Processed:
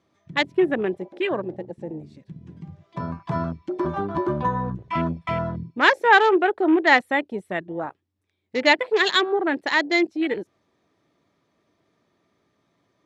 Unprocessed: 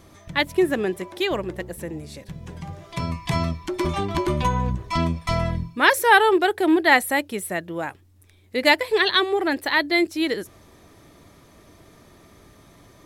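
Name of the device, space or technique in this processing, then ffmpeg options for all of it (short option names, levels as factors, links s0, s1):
over-cleaned archive recording: -filter_complex "[0:a]highpass=140,lowpass=5100,afwtdn=0.0316,asettb=1/sr,asplit=3[s0][s1][s2];[s0]atrim=end=1.214[s3];[s1]atrim=start=1.21:end=1.85,asetpts=PTS-STARTPTS,afade=t=in:d=0.004:c=qsin,afade=t=out:st=0.636:d=0.004:c=qsin,lowpass=f=8700:w=0.5412,lowpass=f=8700:w=1.3066[s4];[s2]atrim=start=1.846[s5];[s3][s4]acrossfade=d=0.004:c1=hsin:c2=qsin[s6];[s6][s5]acrossfade=d=0.004:c1=qsin:c2=hsin"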